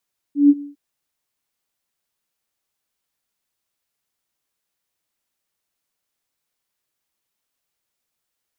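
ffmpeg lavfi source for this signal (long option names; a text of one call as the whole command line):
ffmpeg -f lavfi -i "aevalsrc='0.501*sin(2*PI*287*t)':duration=0.404:sample_rate=44100,afade=type=in:duration=0.145,afade=type=out:start_time=0.145:duration=0.042:silence=0.0841,afade=type=out:start_time=0.26:duration=0.144" out.wav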